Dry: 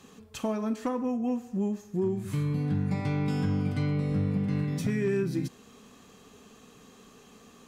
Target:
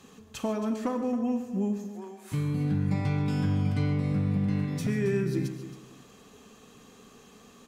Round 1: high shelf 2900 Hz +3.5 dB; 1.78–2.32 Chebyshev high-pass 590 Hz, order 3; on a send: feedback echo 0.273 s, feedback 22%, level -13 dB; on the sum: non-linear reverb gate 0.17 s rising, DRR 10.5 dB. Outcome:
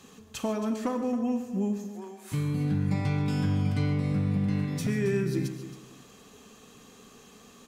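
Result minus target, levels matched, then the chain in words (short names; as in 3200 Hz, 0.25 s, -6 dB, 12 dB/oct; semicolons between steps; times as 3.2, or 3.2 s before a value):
8000 Hz band +3.0 dB
1.78–2.32 Chebyshev high-pass 590 Hz, order 3; on a send: feedback echo 0.273 s, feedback 22%, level -13 dB; on the sum: non-linear reverb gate 0.17 s rising, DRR 10.5 dB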